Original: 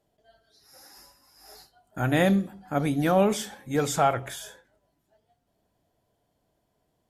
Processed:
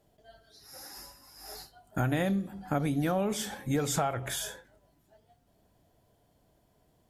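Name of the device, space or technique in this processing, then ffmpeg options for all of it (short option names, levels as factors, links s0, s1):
ASMR close-microphone chain: -af "lowshelf=f=170:g=5,acompressor=threshold=0.0316:ratio=8,highshelf=f=11000:g=3.5,volume=1.58"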